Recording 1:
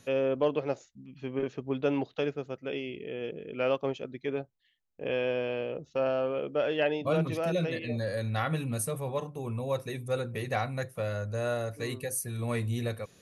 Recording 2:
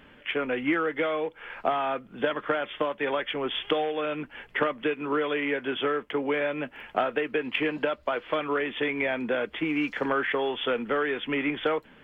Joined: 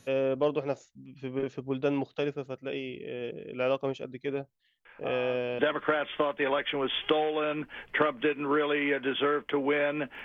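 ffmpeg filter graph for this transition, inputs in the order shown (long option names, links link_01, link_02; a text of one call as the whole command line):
ffmpeg -i cue0.wav -i cue1.wav -filter_complex "[1:a]asplit=2[link_01][link_02];[0:a]apad=whole_dur=10.24,atrim=end=10.24,atrim=end=5.592[link_03];[link_02]atrim=start=2.198:end=6.85[link_04];[link_01]atrim=start=1.46:end=2.2,asetpts=PTS-STARTPTS,volume=-14dB,afade=type=in:duration=0.004:curve=hsin,afade=type=out:start_time=0.736:duration=0.004:curve=hsin,adelay=213885S[link_05];[link_03][link_04]acrossfade=duration=0.004:curve1=hsin:curve2=hsin[link_06];[link_06][link_05]amix=inputs=2:normalize=0" out.wav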